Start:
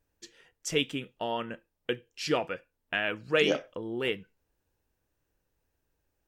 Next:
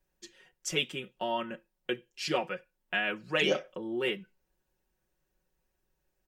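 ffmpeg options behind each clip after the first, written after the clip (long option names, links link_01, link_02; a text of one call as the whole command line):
ffmpeg -i in.wav -filter_complex "[0:a]aecho=1:1:5.4:0.87,acrossover=split=140|1100[link_01][link_02][link_03];[link_01]acompressor=threshold=-56dB:ratio=6[link_04];[link_04][link_02][link_03]amix=inputs=3:normalize=0,volume=-3dB" out.wav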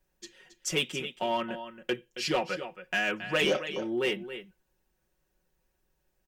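ffmpeg -i in.wav -filter_complex "[0:a]aecho=1:1:273:0.237,asplit=2[link_01][link_02];[link_02]aeval=exprs='0.0473*(abs(mod(val(0)/0.0473+3,4)-2)-1)':channel_layout=same,volume=-7.5dB[link_03];[link_01][link_03]amix=inputs=2:normalize=0" out.wav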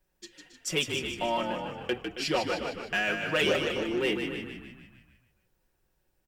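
ffmpeg -i in.wav -filter_complex "[0:a]bandreject=frequency=6400:width=15,asplit=2[link_01][link_02];[link_02]asplit=7[link_03][link_04][link_05][link_06][link_07][link_08][link_09];[link_03]adelay=152,afreqshift=-45,volume=-6dB[link_10];[link_04]adelay=304,afreqshift=-90,volume=-11.2dB[link_11];[link_05]adelay=456,afreqshift=-135,volume=-16.4dB[link_12];[link_06]adelay=608,afreqshift=-180,volume=-21.6dB[link_13];[link_07]adelay=760,afreqshift=-225,volume=-26.8dB[link_14];[link_08]adelay=912,afreqshift=-270,volume=-32dB[link_15];[link_09]adelay=1064,afreqshift=-315,volume=-37.2dB[link_16];[link_10][link_11][link_12][link_13][link_14][link_15][link_16]amix=inputs=7:normalize=0[link_17];[link_01][link_17]amix=inputs=2:normalize=0" out.wav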